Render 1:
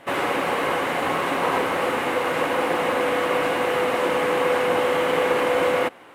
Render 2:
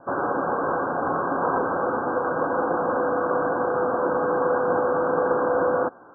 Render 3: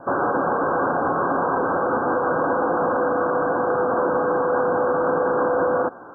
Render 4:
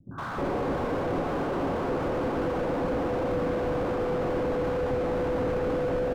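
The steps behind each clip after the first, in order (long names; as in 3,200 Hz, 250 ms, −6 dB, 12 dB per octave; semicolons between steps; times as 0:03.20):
Chebyshev low-pass filter 1,600 Hz, order 10
brickwall limiter −20.5 dBFS, peak gain reduction 10 dB; level +7.5 dB
three-band delay without the direct sound lows, highs, mids 110/310 ms, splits 190/1,000 Hz; slew-rate limiting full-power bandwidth 25 Hz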